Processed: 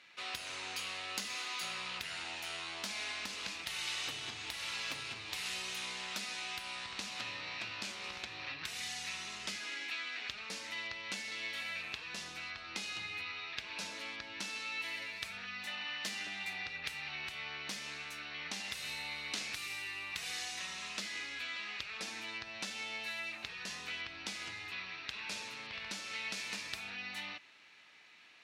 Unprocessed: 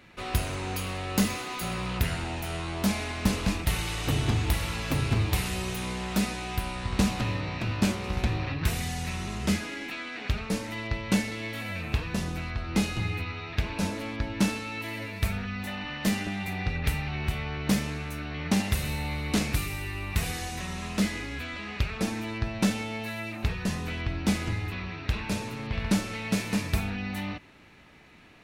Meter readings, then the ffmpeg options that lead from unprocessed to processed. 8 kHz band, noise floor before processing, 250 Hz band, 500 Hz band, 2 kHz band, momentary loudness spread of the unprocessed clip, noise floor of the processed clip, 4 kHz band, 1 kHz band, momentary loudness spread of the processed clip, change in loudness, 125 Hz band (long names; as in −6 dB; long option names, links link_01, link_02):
−7.0 dB, −39 dBFS, −25.5 dB, −17.0 dB, −4.5 dB, 7 LU, −49 dBFS, −2.5 dB, −11.0 dB, 4 LU, −9.5 dB, −30.0 dB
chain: -af "highshelf=frequency=5100:gain=-9,acompressor=threshold=-27dB:ratio=6,bandpass=frequency=5100:width_type=q:width=0.86:csg=0,volume=4.5dB"